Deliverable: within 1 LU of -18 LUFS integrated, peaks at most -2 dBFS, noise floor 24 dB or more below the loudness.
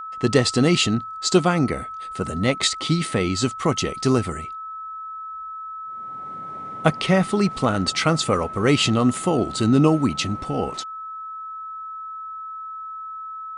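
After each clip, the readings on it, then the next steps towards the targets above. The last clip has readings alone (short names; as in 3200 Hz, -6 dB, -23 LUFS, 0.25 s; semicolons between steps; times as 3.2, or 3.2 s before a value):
steady tone 1300 Hz; tone level -31 dBFS; loudness -21.0 LUFS; peak -2.5 dBFS; loudness target -18.0 LUFS
-> notch 1300 Hz, Q 30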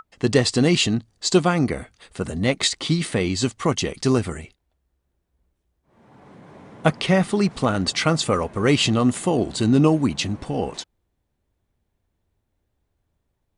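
steady tone none; loudness -21.0 LUFS; peak -3.5 dBFS; loudness target -18.0 LUFS
-> gain +3 dB; limiter -2 dBFS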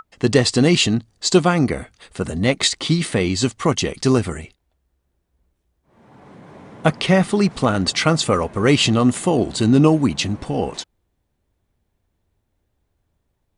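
loudness -18.0 LUFS; peak -2.0 dBFS; noise floor -72 dBFS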